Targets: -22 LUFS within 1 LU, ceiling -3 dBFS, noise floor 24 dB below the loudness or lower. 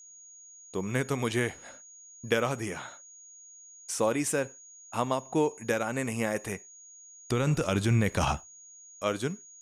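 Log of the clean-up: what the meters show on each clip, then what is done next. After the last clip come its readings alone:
steady tone 6.7 kHz; tone level -49 dBFS; loudness -30.5 LUFS; peak level -12.5 dBFS; loudness target -22.0 LUFS
-> band-stop 6.7 kHz, Q 30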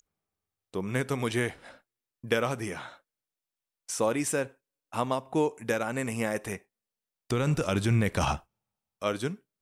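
steady tone not found; loudness -30.0 LUFS; peak level -12.5 dBFS; loudness target -22.0 LUFS
-> trim +8 dB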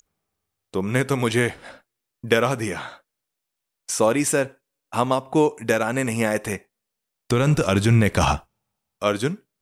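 loudness -22.0 LUFS; peak level -4.5 dBFS; noise floor -82 dBFS

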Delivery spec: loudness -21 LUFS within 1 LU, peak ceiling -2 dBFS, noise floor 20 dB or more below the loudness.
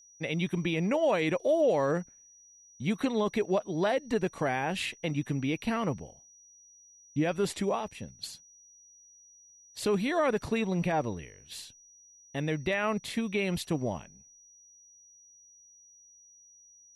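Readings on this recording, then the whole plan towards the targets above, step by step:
steady tone 5.8 kHz; tone level -55 dBFS; loudness -30.5 LUFS; peak level -17.5 dBFS; loudness target -21.0 LUFS
-> band-stop 5.8 kHz, Q 30; trim +9.5 dB

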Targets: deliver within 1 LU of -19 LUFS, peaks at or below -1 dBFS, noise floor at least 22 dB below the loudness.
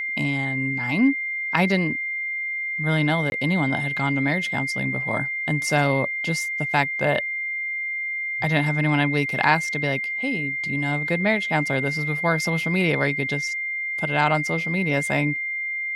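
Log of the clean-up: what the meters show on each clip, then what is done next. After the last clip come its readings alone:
dropouts 1; longest dropout 21 ms; steady tone 2.1 kHz; tone level -25 dBFS; loudness -22.5 LUFS; peak level -3.0 dBFS; loudness target -19.0 LUFS
-> interpolate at 3.30 s, 21 ms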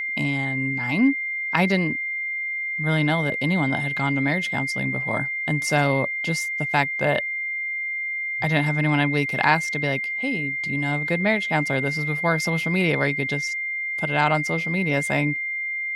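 dropouts 0; steady tone 2.1 kHz; tone level -25 dBFS
-> band-stop 2.1 kHz, Q 30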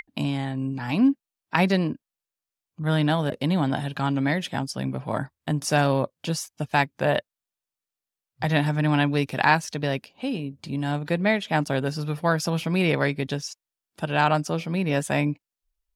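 steady tone not found; loudness -25.0 LUFS; peak level -3.5 dBFS; loudness target -19.0 LUFS
-> trim +6 dB; peak limiter -1 dBFS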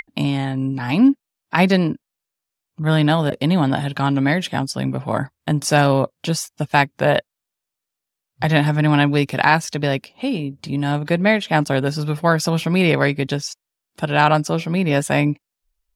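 loudness -19.0 LUFS; peak level -1.0 dBFS; noise floor -84 dBFS

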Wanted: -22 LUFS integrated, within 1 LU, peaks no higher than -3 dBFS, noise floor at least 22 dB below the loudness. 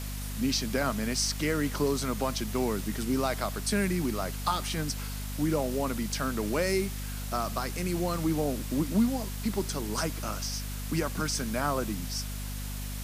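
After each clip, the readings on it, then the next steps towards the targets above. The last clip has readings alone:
hum 50 Hz; highest harmonic 250 Hz; hum level -34 dBFS; noise floor -36 dBFS; noise floor target -53 dBFS; loudness -30.5 LUFS; peak level -13.5 dBFS; loudness target -22.0 LUFS
-> de-hum 50 Hz, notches 5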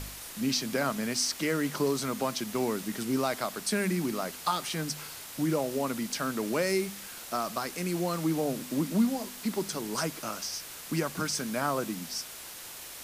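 hum not found; noise floor -44 dBFS; noise floor target -53 dBFS
-> noise print and reduce 9 dB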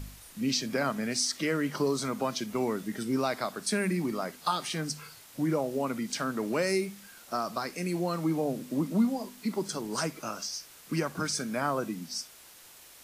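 noise floor -53 dBFS; noise floor target -54 dBFS
-> noise print and reduce 6 dB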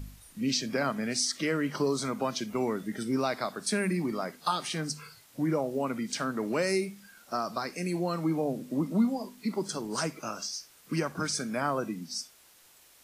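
noise floor -59 dBFS; loudness -31.5 LUFS; peak level -14.5 dBFS; loudness target -22.0 LUFS
-> trim +9.5 dB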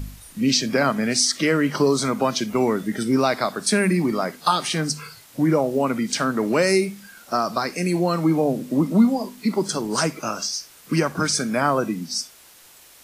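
loudness -22.0 LUFS; peak level -5.0 dBFS; noise floor -49 dBFS

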